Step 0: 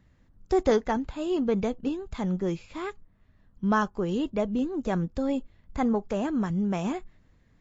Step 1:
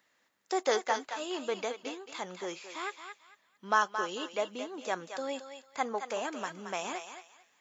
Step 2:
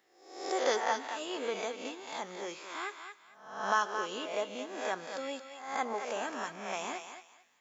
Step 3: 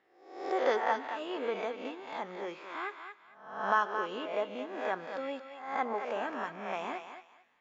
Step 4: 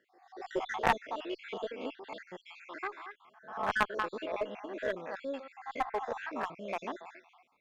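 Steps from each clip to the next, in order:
high-pass 530 Hz 12 dB/octave; tilt EQ +2 dB/octave; thinning echo 223 ms, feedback 26%, high-pass 710 Hz, level -7 dB
reverse spectral sustain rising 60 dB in 0.67 s; on a send at -16 dB: reverberation RT60 0.60 s, pre-delay 3 ms; on the sum: trim -3.5 dB
low-pass 2.4 kHz 12 dB/octave; trim +1.5 dB
random holes in the spectrogram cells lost 53%; one-sided clip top -27.5 dBFS; Chebyshev shaper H 3 -12 dB, 4 -34 dB, 5 -26 dB, 7 -39 dB, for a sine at -20.5 dBFS; trim +8.5 dB

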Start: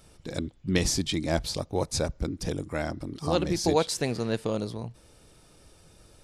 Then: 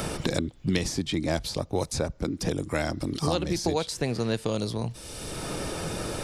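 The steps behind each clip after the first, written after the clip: three bands compressed up and down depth 100%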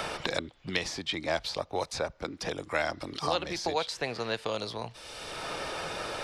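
three-band isolator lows -16 dB, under 540 Hz, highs -15 dB, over 4.9 kHz; trim +2.5 dB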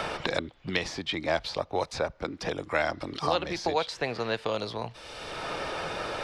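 treble shelf 6.3 kHz -12 dB; trim +3 dB

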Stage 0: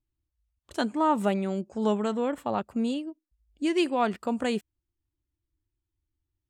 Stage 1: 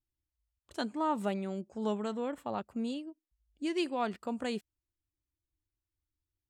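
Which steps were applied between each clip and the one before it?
dynamic bell 4.4 kHz, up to +4 dB, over -50 dBFS, Q 2.3; trim -7.5 dB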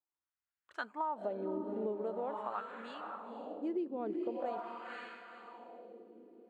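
echo that smears into a reverb 506 ms, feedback 43%, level -4.5 dB; wah-wah 0.44 Hz 360–1600 Hz, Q 2.7; compression 6:1, threshold -40 dBFS, peak gain reduction 10 dB; trim +6.5 dB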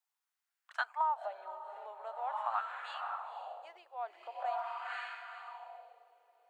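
elliptic high-pass 720 Hz, stop band 60 dB; trim +6 dB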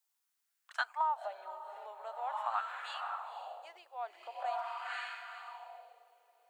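treble shelf 3.4 kHz +9.5 dB; trim -1 dB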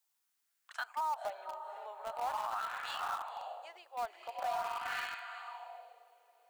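in parallel at -11.5 dB: word length cut 6-bit, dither none; on the sum: peak limiter -29.5 dBFS, peak gain reduction 11 dB; trim +1.5 dB

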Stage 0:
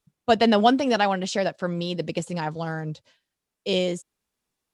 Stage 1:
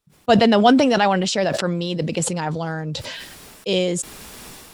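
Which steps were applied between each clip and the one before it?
band-stop 6.4 kHz, Q 24; decay stretcher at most 29 dB/s; trim +3 dB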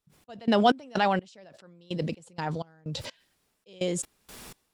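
trance gate "x.x.x..." 63 bpm -24 dB; trim -6.5 dB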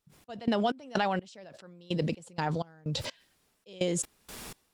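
compression 12:1, threshold -26 dBFS, peak gain reduction 11.5 dB; wow and flutter 25 cents; trim +2 dB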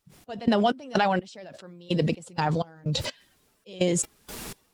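coarse spectral quantiser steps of 15 dB; trim +6 dB

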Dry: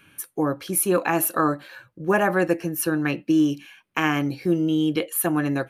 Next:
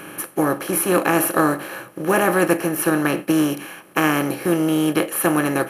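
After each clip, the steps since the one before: spectral levelling over time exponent 0.4; upward expansion 1.5:1, over -34 dBFS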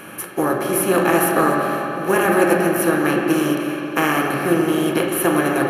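reverberation RT60 3.4 s, pre-delay 4 ms, DRR -1 dB; trim -1 dB

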